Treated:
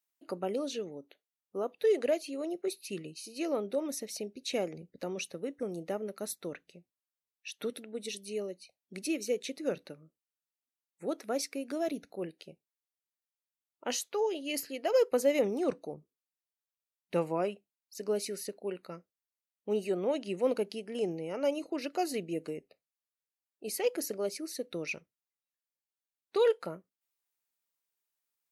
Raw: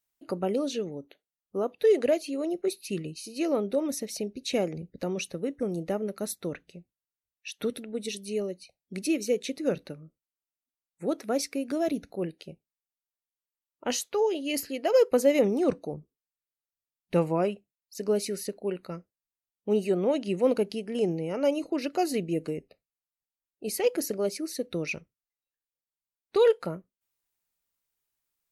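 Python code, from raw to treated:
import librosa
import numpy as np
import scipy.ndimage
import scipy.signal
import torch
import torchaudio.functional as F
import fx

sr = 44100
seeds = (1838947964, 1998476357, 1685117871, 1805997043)

y = fx.highpass(x, sr, hz=310.0, slope=6)
y = F.gain(torch.from_numpy(y), -3.5).numpy()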